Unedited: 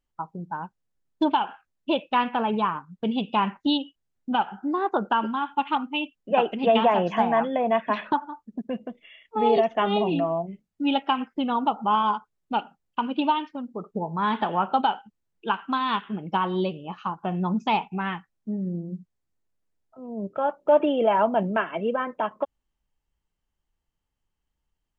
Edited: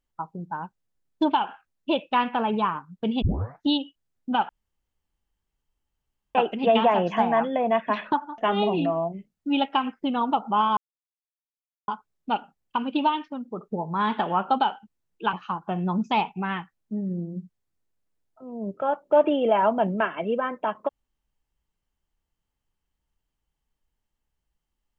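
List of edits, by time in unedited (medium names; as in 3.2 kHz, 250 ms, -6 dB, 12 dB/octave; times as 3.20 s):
3.22 s: tape start 0.42 s
4.49–6.35 s: room tone
8.38–9.72 s: delete
12.11 s: insert silence 1.11 s
15.56–16.89 s: delete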